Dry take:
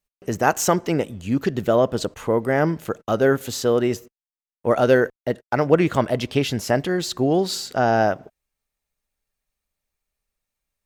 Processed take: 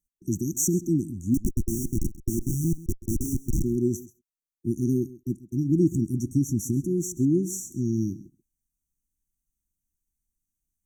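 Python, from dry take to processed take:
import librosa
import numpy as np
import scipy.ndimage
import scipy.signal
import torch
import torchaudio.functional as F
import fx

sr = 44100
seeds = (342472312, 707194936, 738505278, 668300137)

y = fx.schmitt(x, sr, flips_db=-21.5, at=(1.34, 3.64))
y = fx.brickwall_bandstop(y, sr, low_hz=370.0, high_hz=5600.0)
y = y + 10.0 ** (-18.5 / 20.0) * np.pad(y, (int(133 * sr / 1000.0), 0))[:len(y)]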